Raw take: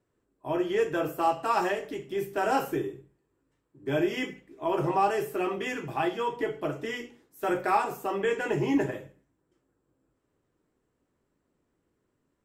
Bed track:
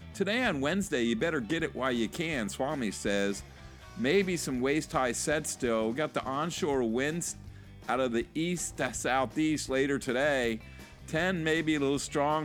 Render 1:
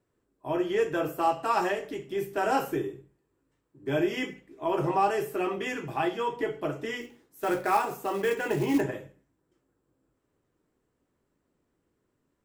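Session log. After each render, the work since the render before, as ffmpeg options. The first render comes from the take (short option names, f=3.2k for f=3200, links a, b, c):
-filter_complex "[0:a]asettb=1/sr,asplit=3[a][b][c];[a]atrim=end=7.014[d];[b]atrim=start=7.01:end=8.81,asetpts=PTS-STARTPTS,afade=t=in:d=0.004:c=qsin,afade=t=out:st=1.796:d=0.004:c=qsin,acrusher=bits=5:mode=log:mix=0:aa=0.000001[e];[c]atrim=start=8.806[f];[d][e]acrossfade=d=0.004:c1=hsin:c2=qsin[g];[g][f]acrossfade=d=0.004:c1=qsin:c2=hsin"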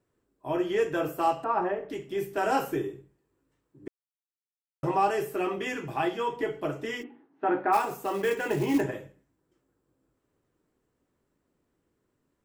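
-filter_complex "[0:a]asettb=1/sr,asplit=3[a][b][c];[a]atrim=end=1.444[d];[b]atrim=start=1.44:end=1.9,asetpts=PTS-STARTPTS,afade=t=in:d=0.004:c=qsin,afade=t=out:st=0.456:d=0.004:c=qsin,lowpass=1.3k[e];[c]atrim=start=1.896[f];[d][e]acrossfade=d=0.004:c1=hsin:c2=qsin[g];[g][f]acrossfade=d=0.004:c1=qsin:c2=hsin,asplit=3[h][i][j];[h]afade=t=out:st=7.02:d=0.02[k];[i]highpass=200,equalizer=f=280:t=q:w=4:g=10,equalizer=f=510:t=q:w=4:g=-5,equalizer=f=820:t=q:w=4:g=8,equalizer=f=2.2k:t=q:w=4:g=-5,lowpass=f=2.4k:w=0.5412,lowpass=f=2.4k:w=1.3066,afade=t=in:st=7.02:d=0.02,afade=t=out:st=7.72:d=0.02[l];[j]afade=t=in:st=7.72:d=0.02[m];[k][l][m]amix=inputs=3:normalize=0,asplit=3[n][o][p];[n]atrim=end=3.88,asetpts=PTS-STARTPTS,afade=t=out:st=3.876:d=0.004:c=hsin[q];[o]atrim=start=3.88:end=4.83,asetpts=PTS-STARTPTS,volume=0[r];[p]atrim=start=4.83,asetpts=PTS-STARTPTS,afade=t=in:d=0.004:c=hsin[s];[q][r][s]concat=n=3:v=0:a=1"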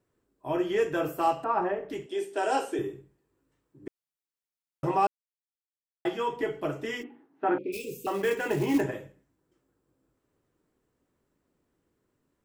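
-filter_complex "[0:a]asettb=1/sr,asplit=3[a][b][c];[a]atrim=end=2.064[d];[b]atrim=start=2.06:end=2.79,asetpts=PTS-STARTPTS,afade=t=in:d=0.004:c=qsin,afade=t=out:st=0.726:d=0.004:c=qsin,highpass=f=290:w=0.5412,highpass=f=290:w=1.3066,equalizer=f=1.2k:t=q:w=4:g=-7,equalizer=f=2.1k:t=q:w=4:g=-4,equalizer=f=3.4k:t=q:w=4:g=4,equalizer=f=8.8k:t=q:w=4:g=7,lowpass=f=9.6k:w=0.5412,lowpass=f=9.6k:w=1.3066[e];[c]atrim=start=2.786[f];[d][e]acrossfade=d=0.004:c1=hsin:c2=qsin[g];[g][f]acrossfade=d=0.004:c1=qsin:c2=hsin,asettb=1/sr,asplit=3[h][i][j];[h]atrim=end=7.584[k];[i]atrim=start=7.58:end=8.07,asetpts=PTS-STARTPTS,afade=t=in:d=0.004:c=qsin,afade=t=out:st=0.486:d=0.004:c=qsin,asuperstop=centerf=1100:order=20:qfactor=0.61[l];[j]atrim=start=8.066[m];[k][l]acrossfade=d=0.004:c1=hsin:c2=qsin[n];[n][m]acrossfade=d=0.004:c1=qsin:c2=hsin,asplit=3[o][p][q];[o]atrim=end=5.07,asetpts=PTS-STARTPTS,afade=t=out:st=5.066:d=0.004:c=hsin[r];[p]atrim=start=5.07:end=6.05,asetpts=PTS-STARTPTS,volume=0[s];[q]atrim=start=6.05,asetpts=PTS-STARTPTS,afade=t=in:d=0.004:c=hsin[t];[r][s][t]concat=n=3:v=0:a=1"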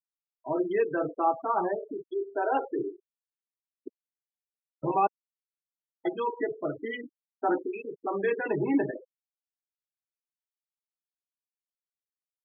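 -af "highpass=f=150:w=0.5412,highpass=f=150:w=1.3066,afftfilt=real='re*gte(hypot(re,im),0.0447)':imag='im*gte(hypot(re,im),0.0447)':win_size=1024:overlap=0.75"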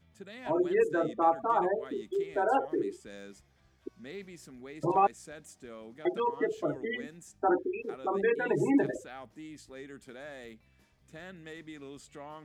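-filter_complex "[1:a]volume=-17.5dB[a];[0:a][a]amix=inputs=2:normalize=0"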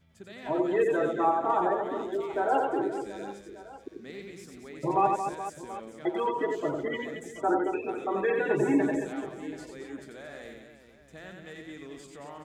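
-af "aecho=1:1:90|225|427.5|731.2|1187:0.631|0.398|0.251|0.158|0.1"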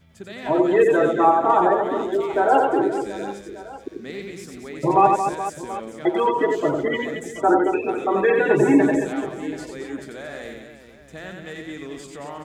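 -af "volume=9dB"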